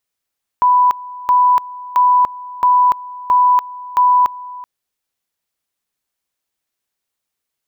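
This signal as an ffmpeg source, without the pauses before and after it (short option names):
-f lavfi -i "aevalsrc='pow(10,(-8-19.5*gte(mod(t,0.67),0.29))/20)*sin(2*PI*992*t)':d=4.02:s=44100"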